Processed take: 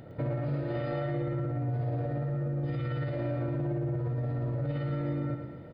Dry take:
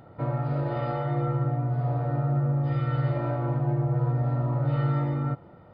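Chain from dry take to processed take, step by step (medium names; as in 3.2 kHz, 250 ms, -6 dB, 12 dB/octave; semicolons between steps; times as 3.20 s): high-order bell 1 kHz -9.5 dB 1.1 oct; peak limiter -28 dBFS, peak gain reduction 11 dB; feedback delay 110 ms, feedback 52%, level -7 dB; trim +3.5 dB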